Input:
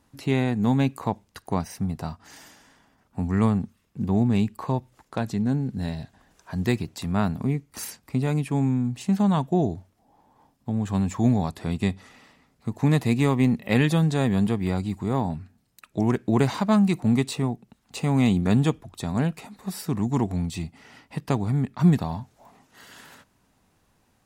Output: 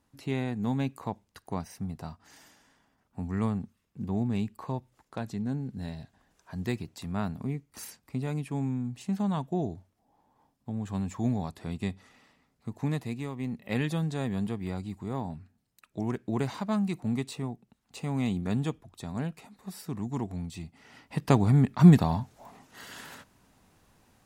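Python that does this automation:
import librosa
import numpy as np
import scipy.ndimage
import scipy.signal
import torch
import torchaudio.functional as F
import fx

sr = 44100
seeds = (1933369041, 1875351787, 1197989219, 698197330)

y = fx.gain(x, sr, db=fx.line((12.78, -8.0), (13.32, -16.0), (13.73, -9.0), (20.64, -9.0), (21.32, 2.5)))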